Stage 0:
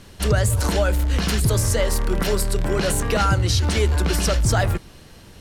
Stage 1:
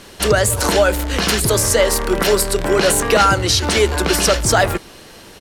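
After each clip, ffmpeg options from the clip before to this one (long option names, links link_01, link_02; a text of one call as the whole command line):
ffmpeg -i in.wav -af "firequalizer=gain_entry='entry(100,0);entry(230,7);entry(370,12)':delay=0.05:min_phase=1,volume=-3.5dB" out.wav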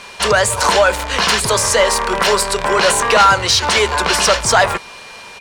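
ffmpeg -i in.wav -filter_complex "[0:a]equalizer=frequency=315:width_type=o:width=0.33:gain=-12,equalizer=frequency=1000:width_type=o:width=0.33:gain=8,equalizer=frequency=12500:width_type=o:width=0.33:gain=-12,aeval=exprs='val(0)+0.00708*sin(2*PI*2400*n/s)':channel_layout=same,asplit=2[link_01][link_02];[link_02]highpass=frequency=720:poles=1,volume=11dB,asoftclip=type=tanh:threshold=0dB[link_03];[link_01][link_03]amix=inputs=2:normalize=0,lowpass=frequency=7200:poles=1,volume=-6dB,volume=-1dB" out.wav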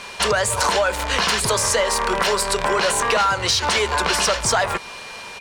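ffmpeg -i in.wav -af "acompressor=threshold=-17dB:ratio=4" out.wav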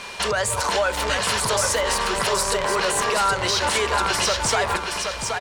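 ffmpeg -i in.wav -af "alimiter=limit=-13.5dB:level=0:latency=1:release=202,aecho=1:1:774|1548|2322:0.562|0.146|0.038" out.wav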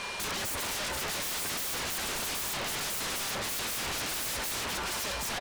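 ffmpeg -i in.wav -af "aeval=exprs='0.0422*(abs(mod(val(0)/0.0422+3,4)-2)-1)':channel_layout=same,volume=-1.5dB" out.wav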